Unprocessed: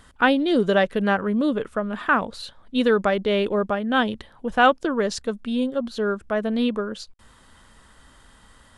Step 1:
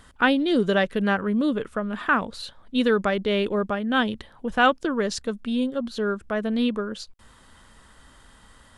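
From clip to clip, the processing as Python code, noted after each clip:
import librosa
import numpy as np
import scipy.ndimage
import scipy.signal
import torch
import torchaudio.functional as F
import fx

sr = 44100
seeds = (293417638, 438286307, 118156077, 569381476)

y = fx.dynamic_eq(x, sr, hz=680.0, q=0.97, threshold_db=-33.0, ratio=4.0, max_db=-4)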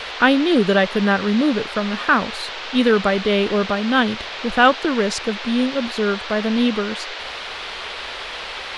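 y = fx.dmg_noise_band(x, sr, seeds[0], low_hz=390.0, high_hz=4000.0, level_db=-36.0)
y = F.gain(torch.from_numpy(y), 5.0).numpy()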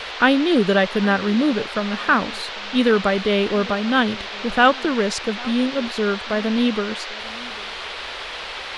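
y = x + 10.0 ** (-22.0 / 20.0) * np.pad(x, (int(799 * sr / 1000.0), 0))[:len(x)]
y = F.gain(torch.from_numpy(y), -1.0).numpy()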